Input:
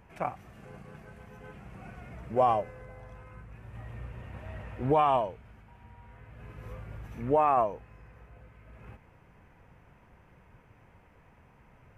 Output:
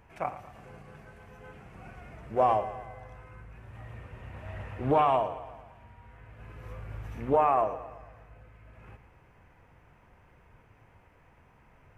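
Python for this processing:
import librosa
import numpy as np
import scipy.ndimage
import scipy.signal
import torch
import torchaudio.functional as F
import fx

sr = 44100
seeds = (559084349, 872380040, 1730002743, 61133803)

y = fx.peak_eq(x, sr, hz=190.0, db=-4.0, octaves=0.67)
y = fx.hum_notches(y, sr, base_hz=60, count=10)
y = fx.echo_feedback(y, sr, ms=113, feedback_pct=55, wet_db=-14)
y = fx.rider(y, sr, range_db=4, speed_s=0.5)
y = fx.doppler_dist(y, sr, depth_ms=0.38)
y = F.gain(torch.from_numpy(y), 3.5).numpy()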